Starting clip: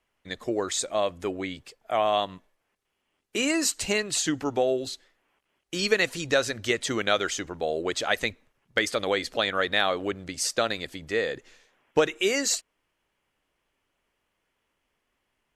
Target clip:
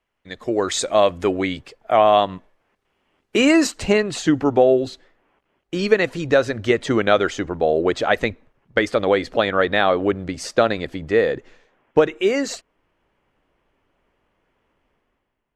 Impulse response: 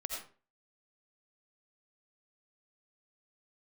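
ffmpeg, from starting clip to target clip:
-af "asetnsamples=n=441:p=0,asendcmd='1.61 lowpass f 1800;3.67 lowpass f 1000',lowpass=f=3.7k:p=1,dynaudnorm=f=100:g=11:m=12.5dB"

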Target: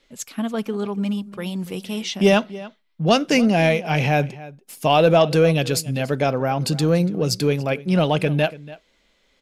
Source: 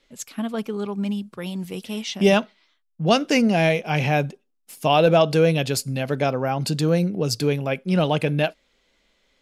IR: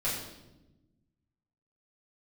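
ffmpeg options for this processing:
-filter_complex "[0:a]asplit=2[a][b];[b]asoftclip=type=tanh:threshold=-17dB,volume=-10.5dB[c];[a][c]amix=inputs=2:normalize=0,asplit=2[d][e];[e]adelay=285.7,volume=-18dB,highshelf=f=4k:g=-6.43[f];[d][f]amix=inputs=2:normalize=0"

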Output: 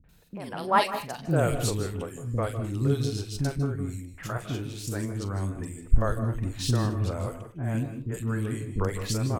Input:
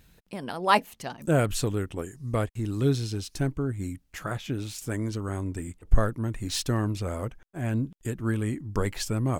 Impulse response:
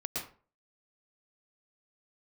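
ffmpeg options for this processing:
-filter_complex "[0:a]asettb=1/sr,asplit=3[a][b][c];[a]atrim=end=6.184[d];[b]atrim=start=6.18:end=7.12,asetpts=PTS-STARTPTS,afade=t=in:d=0.004:c=qsin,afade=t=out:st=0.936:d=0.004:c=qsin,bass=f=250:g=3,treble=f=4k:g=-4[e];[c]atrim=start=7.116[f];[d][e]acrossfade=d=0.004:c1=hsin:c2=qsin[g];[g][f]acrossfade=d=0.004:c1=qsin:c2=hsin,acrossover=split=320|2200[h][i][j];[i]adelay=40[k];[j]adelay=90[l];[h][k][l]amix=inputs=3:normalize=0,asplit=2[m][n];[1:a]atrim=start_sample=2205,afade=t=out:st=0.26:d=0.01,atrim=end_sample=11907,adelay=42[o];[n][o]afir=irnorm=-1:irlink=0,volume=-11.5dB[p];[m][p]amix=inputs=2:normalize=0"

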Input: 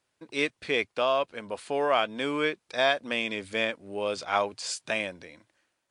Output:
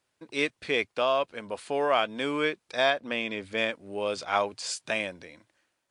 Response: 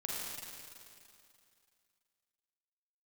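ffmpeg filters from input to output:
-filter_complex "[0:a]asettb=1/sr,asplit=3[a][b][c];[a]atrim=end=2.904[d];[b]atrim=start=2.9:end=3.58,asetpts=PTS-STARTPTS,afade=t=in:d=0.004:c=qsin,afade=t=out:st=0.676:d=0.004:c=qsin,lowpass=f=3.4k:p=1[e];[c]atrim=start=3.576[f];[d][e]acrossfade=d=0.004:c1=hsin:c2=qsin[g];[g][f]acrossfade=d=0.004:c1=qsin:c2=hsin"

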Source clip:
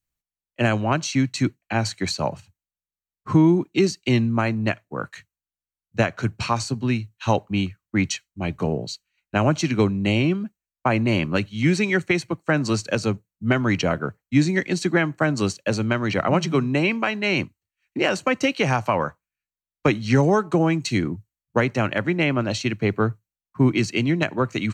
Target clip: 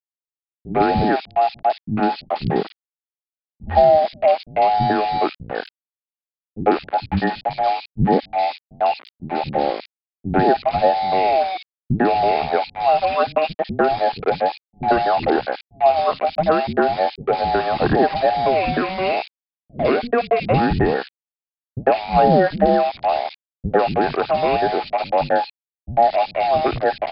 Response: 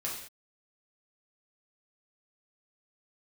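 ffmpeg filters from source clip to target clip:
-filter_complex "[0:a]afftfilt=real='real(if(between(b,1,1008),(2*floor((b-1)/48)+1)*48-b,b),0)':imag='imag(if(between(b,1,1008),(2*floor((b-1)/48)+1)*48-b,b),0)*if(between(b,1,1008),-1,1)':win_size=2048:overlap=0.75,equalizer=f=200:t=o:w=2.1:g=11,asplit=2[a][b];[b]asoftclip=type=tanh:threshold=-16.5dB,volume=-8dB[c];[a][c]amix=inputs=2:normalize=0,aemphasis=mode=reproduction:type=75fm,aresample=11025,aeval=exprs='val(0)*gte(abs(val(0)),0.0708)':c=same,aresample=44100,acrossover=split=240|2700[d][e][f];[e]adelay=90[g];[f]adelay=140[h];[d][g][h]amix=inputs=3:normalize=0,asetrate=40219,aresample=44100,volume=-1dB"

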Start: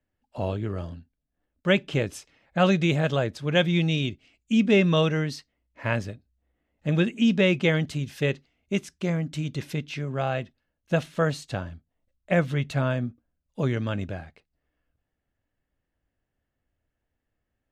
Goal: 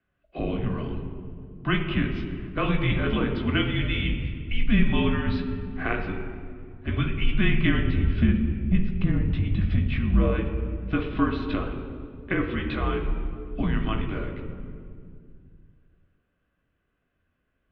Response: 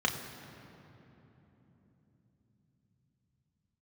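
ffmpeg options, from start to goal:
-filter_complex "[0:a]asettb=1/sr,asplit=3[a][b][c];[a]atrim=end=7.784[d];[b]atrim=start=7.78:end=10.3,asetpts=PTS-STARTPTS,afade=t=in:d=0.004:c=qsin,afade=t=out:st=2.516:d=0.004:c=qsin,equalizer=f=270:t=o:w=2.3:g=14.5[e];[c]atrim=start=10.296[f];[d][e]acrossfade=d=0.004:c1=hsin:c2=qsin[g];[g][f]acrossfade=d=0.004:c1=qsin:c2=hsin,acompressor=threshold=-31dB:ratio=3[h];[1:a]atrim=start_sample=2205,asetrate=79380,aresample=44100[i];[h][i]afir=irnorm=-1:irlink=0,highpass=f=220:t=q:w=0.5412,highpass=f=220:t=q:w=1.307,lowpass=f=3.6k:t=q:w=0.5176,lowpass=f=3.6k:t=q:w=0.7071,lowpass=f=3.6k:t=q:w=1.932,afreqshift=-210,volume=5.5dB"

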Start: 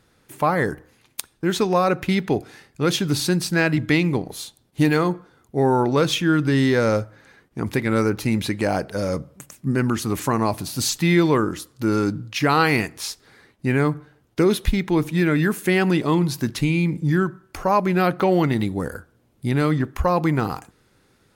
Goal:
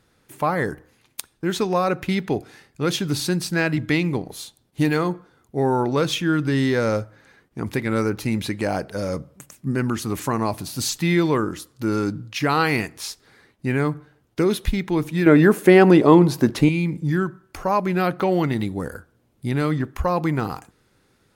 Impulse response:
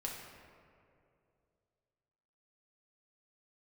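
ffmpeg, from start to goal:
-filter_complex "[0:a]asettb=1/sr,asplit=3[a][b][c];[a]atrim=end=15.264[d];[b]atrim=start=15.26:end=16.69,asetpts=PTS-STARTPTS,afade=t=in:d=0.004:c=qsin,afade=t=out:st=1.426:d=0.004:c=qsin,equalizer=f=520:t=o:w=2.8:g=12.5[e];[c]atrim=start=16.686[f];[d][e]acrossfade=d=0.004:c1=hsin:c2=qsin[g];[g][f]acrossfade=d=0.004:c1=qsin:c2=hsin,volume=-2dB"

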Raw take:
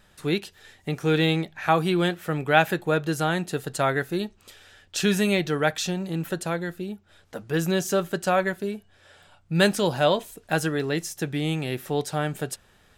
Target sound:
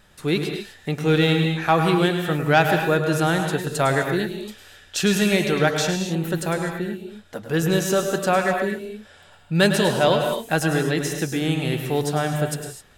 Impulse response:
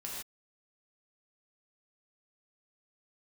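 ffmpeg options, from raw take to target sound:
-filter_complex "[0:a]asoftclip=type=tanh:threshold=-8.5dB,asplit=2[a][b];[1:a]atrim=start_sample=2205,adelay=104[c];[b][c]afir=irnorm=-1:irlink=0,volume=-4dB[d];[a][d]amix=inputs=2:normalize=0,volume=3dB"

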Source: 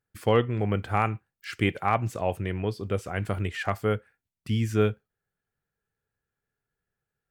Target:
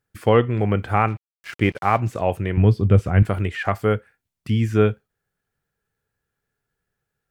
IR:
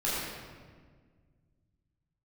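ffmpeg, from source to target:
-filter_complex "[0:a]asettb=1/sr,asplit=3[a][b][c];[a]atrim=end=2.574[d];[b]atrim=start=2.57:end=3.23,asetpts=PTS-STARTPTS,afade=t=in:d=0.004:c=qsin,afade=t=out:st=0.656:d=0.004:c=qsin,bass=f=250:g=12,treble=f=4k:g=-6[e];[c]atrim=start=3.226[f];[d][e]acrossfade=d=0.004:c1=hsin:c2=qsin[g];[g][f]acrossfade=d=0.004:c1=qsin:c2=hsin,acrossover=split=2900[h][i];[i]acompressor=threshold=-50dB:ratio=4:attack=1:release=60[j];[h][j]amix=inputs=2:normalize=0,asplit=3[k][l][m];[k]afade=t=out:st=1.07:d=0.02[n];[l]aeval=exprs='sgn(val(0))*max(abs(val(0))-0.00447,0)':c=same,afade=t=in:st=1.07:d=0.02,afade=t=out:st=1.99:d=0.02[o];[m]afade=t=in:st=1.99:d=0.02[p];[n][o][p]amix=inputs=3:normalize=0,volume=6dB"

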